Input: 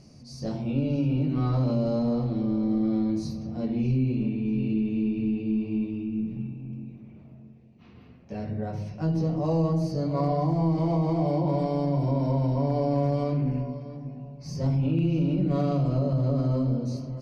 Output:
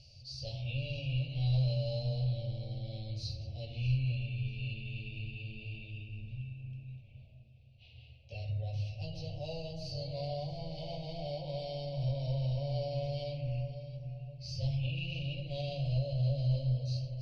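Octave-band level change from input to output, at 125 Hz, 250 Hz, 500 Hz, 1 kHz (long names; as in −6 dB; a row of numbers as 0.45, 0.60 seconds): −6.5, −20.0, −11.5, −15.5 decibels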